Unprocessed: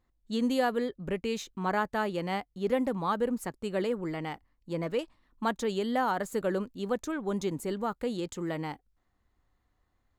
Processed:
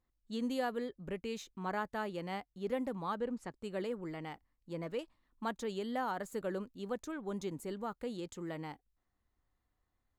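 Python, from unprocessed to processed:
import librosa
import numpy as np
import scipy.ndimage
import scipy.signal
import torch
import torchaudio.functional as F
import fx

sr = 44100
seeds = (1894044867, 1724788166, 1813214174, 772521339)

y = fx.lowpass(x, sr, hz=6100.0, slope=12, at=(3.15, 3.62))
y = F.gain(torch.from_numpy(y), -8.0).numpy()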